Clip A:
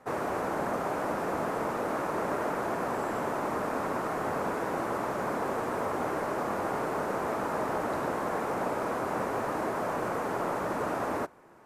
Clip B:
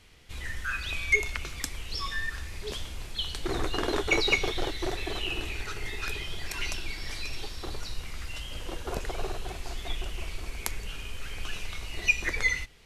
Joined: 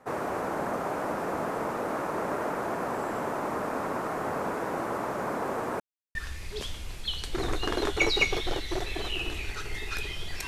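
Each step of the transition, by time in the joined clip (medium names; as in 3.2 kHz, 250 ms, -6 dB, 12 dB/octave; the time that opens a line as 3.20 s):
clip A
5.80–6.15 s: mute
6.15 s: go over to clip B from 2.26 s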